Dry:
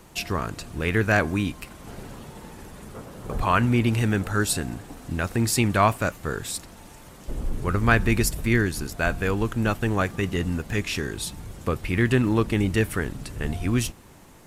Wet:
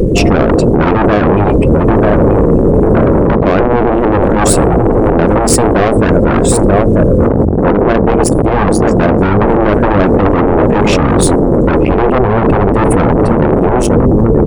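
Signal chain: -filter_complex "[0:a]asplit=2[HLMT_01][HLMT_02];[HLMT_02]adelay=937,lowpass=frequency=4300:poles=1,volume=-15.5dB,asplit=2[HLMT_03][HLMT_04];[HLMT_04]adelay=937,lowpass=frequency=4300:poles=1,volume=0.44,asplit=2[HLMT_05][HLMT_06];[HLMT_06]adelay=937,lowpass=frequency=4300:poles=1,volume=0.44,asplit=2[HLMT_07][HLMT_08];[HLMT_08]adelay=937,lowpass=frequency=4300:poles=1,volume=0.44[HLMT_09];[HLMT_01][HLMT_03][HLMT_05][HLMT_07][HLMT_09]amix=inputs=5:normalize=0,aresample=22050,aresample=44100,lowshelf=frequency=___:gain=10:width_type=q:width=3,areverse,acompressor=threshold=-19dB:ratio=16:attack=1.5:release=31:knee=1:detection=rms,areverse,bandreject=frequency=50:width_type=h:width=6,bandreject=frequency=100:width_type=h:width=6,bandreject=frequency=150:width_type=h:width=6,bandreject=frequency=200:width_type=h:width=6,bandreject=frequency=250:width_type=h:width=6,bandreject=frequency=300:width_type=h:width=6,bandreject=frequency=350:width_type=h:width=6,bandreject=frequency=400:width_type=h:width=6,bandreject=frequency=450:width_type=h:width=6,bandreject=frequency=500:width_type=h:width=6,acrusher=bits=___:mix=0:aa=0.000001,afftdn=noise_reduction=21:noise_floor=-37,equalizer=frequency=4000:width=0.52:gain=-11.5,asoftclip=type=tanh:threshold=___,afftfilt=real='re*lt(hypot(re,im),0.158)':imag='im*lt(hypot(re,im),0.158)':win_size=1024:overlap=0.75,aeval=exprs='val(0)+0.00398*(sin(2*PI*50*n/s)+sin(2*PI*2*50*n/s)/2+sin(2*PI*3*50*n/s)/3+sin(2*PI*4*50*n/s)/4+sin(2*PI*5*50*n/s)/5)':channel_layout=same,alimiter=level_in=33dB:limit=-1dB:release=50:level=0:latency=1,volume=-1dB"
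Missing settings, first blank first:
660, 10, -27.5dB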